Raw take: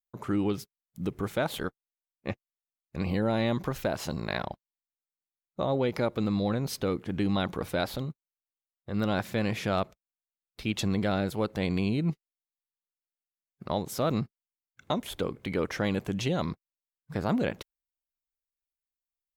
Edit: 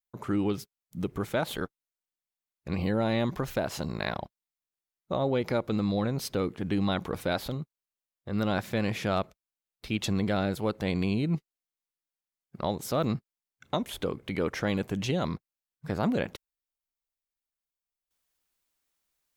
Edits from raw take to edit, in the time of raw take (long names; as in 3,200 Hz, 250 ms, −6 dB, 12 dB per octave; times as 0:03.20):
compress silence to 75%